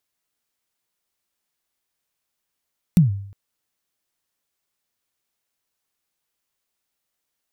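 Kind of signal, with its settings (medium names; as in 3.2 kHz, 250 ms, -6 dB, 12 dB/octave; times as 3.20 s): kick drum length 0.36 s, from 190 Hz, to 99 Hz, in 135 ms, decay 0.63 s, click on, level -7 dB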